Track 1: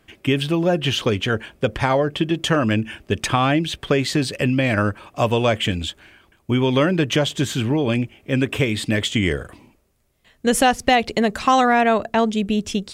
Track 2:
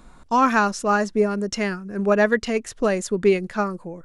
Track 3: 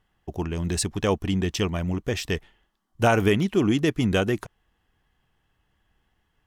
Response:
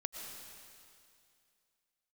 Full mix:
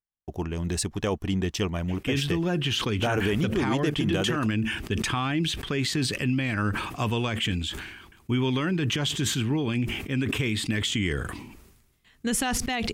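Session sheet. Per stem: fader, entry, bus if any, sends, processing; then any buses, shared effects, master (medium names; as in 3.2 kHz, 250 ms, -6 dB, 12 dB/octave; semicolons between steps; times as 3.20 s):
-4.5 dB, 1.80 s, no send, peaking EQ 580 Hz -12 dB 0.66 oct; decay stretcher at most 51 dB/s
mute
-2.0 dB, 0.00 s, no send, gate -51 dBFS, range -30 dB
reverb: none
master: peak limiter -16 dBFS, peak gain reduction 7.5 dB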